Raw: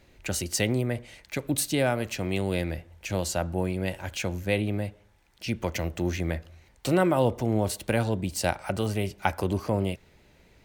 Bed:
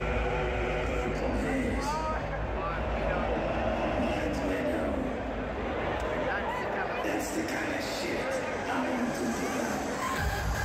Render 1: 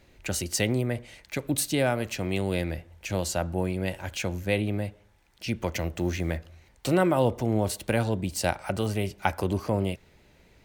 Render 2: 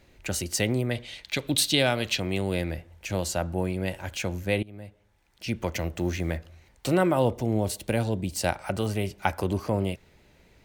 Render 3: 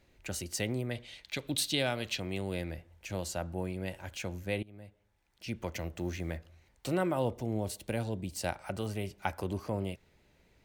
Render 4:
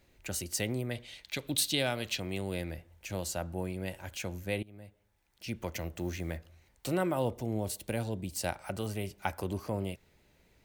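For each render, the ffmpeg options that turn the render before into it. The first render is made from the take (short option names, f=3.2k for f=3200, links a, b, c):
-filter_complex "[0:a]asettb=1/sr,asplit=3[a][b][c];[a]atrim=end=5.974[d];[b]atrim=start=5.97:end=6.37,asetpts=PTS-STARTPTS,afade=t=in:d=0.004:c=qsin,afade=t=out:st=0.396:d=0.004:c=qsin,acrusher=bits=8:mix=0:aa=0.5[e];[c]atrim=start=6.366[f];[d][e]acrossfade=d=0.004:c1=hsin:c2=qsin[g];[g][f]acrossfade=d=0.004:c1=qsin:c2=hsin"
-filter_complex "[0:a]asettb=1/sr,asplit=3[a][b][c];[a]atrim=end=0.914[d];[b]atrim=start=0.91:end=2.2,asetpts=PTS-STARTPTS,afade=t=in:d=0.004:c=qsin,afade=t=out:st=1.286:d=0.004:c=qsin,equalizer=f=3.6k:w=1.3:g=13.5[e];[c]atrim=start=2.196[f];[d][e]acrossfade=d=0.004:c1=hsin:c2=qsin[g];[g][f]acrossfade=d=0.004:c1=qsin:c2=hsin,asettb=1/sr,asplit=3[h][i][j];[h]atrim=end=7.334[k];[i]atrim=start=7.33:end=8.36,asetpts=PTS-STARTPTS,afade=t=in:d=0.004:c=qsin,afade=t=out:st=1.026:d=0.004:c=qsin,equalizer=f=1.3k:t=o:w=1.3:g=-5[l];[j]atrim=start=8.356[m];[k][l]acrossfade=d=0.004:c1=hsin:c2=qsin[n];[n][m]acrossfade=d=0.004:c1=qsin:c2=hsin,asplit=2[o][p];[o]atrim=end=4.63,asetpts=PTS-STARTPTS,afade=t=out:st=4.626:d=0.004:c=hsin:silence=0.0749894[q];[p]atrim=start=4.63,asetpts=PTS-STARTPTS,afade=t=in:d=0.89:silence=0.0749894[r];[q][r]concat=n=2:v=0:a=1"
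-af "volume=-8dB"
-af "highshelf=f=9.3k:g=8"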